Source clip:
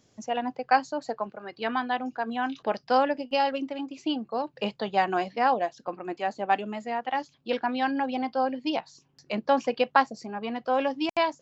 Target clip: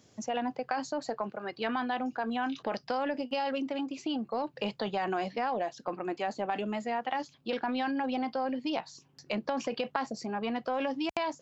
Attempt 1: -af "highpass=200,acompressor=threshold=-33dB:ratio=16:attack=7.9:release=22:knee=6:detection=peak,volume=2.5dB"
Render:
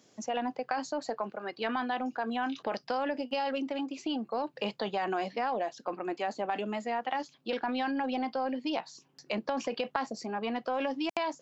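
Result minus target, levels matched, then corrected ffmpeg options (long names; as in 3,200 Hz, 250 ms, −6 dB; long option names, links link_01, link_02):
125 Hz band −2.5 dB
-af "highpass=53,acompressor=threshold=-33dB:ratio=16:attack=7.9:release=22:knee=6:detection=peak,volume=2.5dB"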